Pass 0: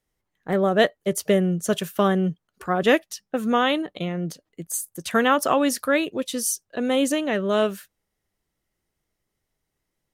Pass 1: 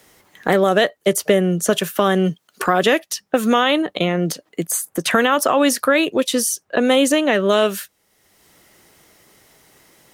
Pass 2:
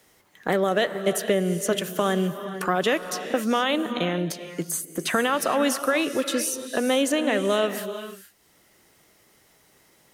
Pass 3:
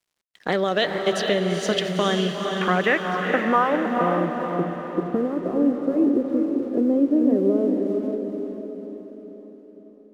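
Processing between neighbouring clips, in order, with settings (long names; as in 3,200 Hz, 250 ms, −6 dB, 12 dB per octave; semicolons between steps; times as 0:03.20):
high-pass filter 300 Hz 6 dB per octave; boost into a limiter +13 dB; multiband upward and downward compressor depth 70%; level −4.5 dB
reverb whose tail is shaped and stops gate 490 ms rising, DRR 9.5 dB; level −7 dB
low-pass filter sweep 4,600 Hz → 360 Hz, 0:01.84–0:05.07; dead-zone distortion −52.5 dBFS; feedback delay with all-pass diffusion 457 ms, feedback 50%, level −4.5 dB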